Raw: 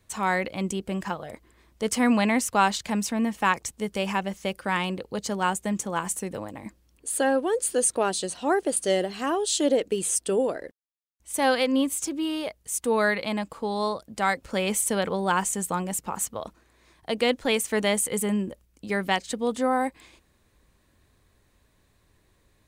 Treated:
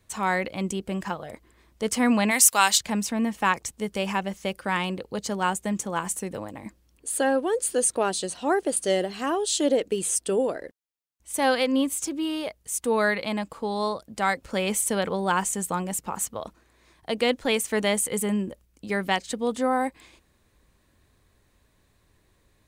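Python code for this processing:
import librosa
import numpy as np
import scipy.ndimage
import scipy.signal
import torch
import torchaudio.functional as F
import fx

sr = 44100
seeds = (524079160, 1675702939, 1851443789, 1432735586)

y = fx.tilt_eq(x, sr, slope=4.5, at=(2.3, 2.78), fade=0.02)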